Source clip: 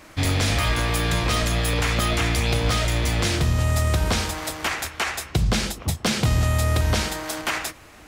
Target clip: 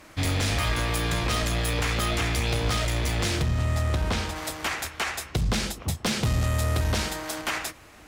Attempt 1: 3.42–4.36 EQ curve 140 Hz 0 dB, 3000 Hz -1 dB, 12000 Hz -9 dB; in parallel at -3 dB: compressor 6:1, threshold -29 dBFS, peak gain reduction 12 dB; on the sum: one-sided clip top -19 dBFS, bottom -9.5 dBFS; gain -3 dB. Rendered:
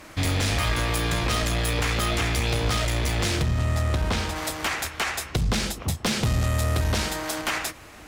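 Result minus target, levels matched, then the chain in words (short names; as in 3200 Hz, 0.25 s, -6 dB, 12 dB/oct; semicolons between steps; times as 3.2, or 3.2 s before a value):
compressor: peak gain reduction +12 dB
3.42–4.36 EQ curve 140 Hz 0 dB, 3000 Hz -1 dB, 12000 Hz -9 dB; one-sided clip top -19 dBFS, bottom -9.5 dBFS; gain -3 dB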